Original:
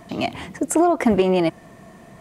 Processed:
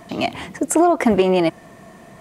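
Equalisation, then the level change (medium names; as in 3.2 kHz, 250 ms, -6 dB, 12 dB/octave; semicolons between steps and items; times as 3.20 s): bass shelf 210 Hz -4.5 dB; +3.0 dB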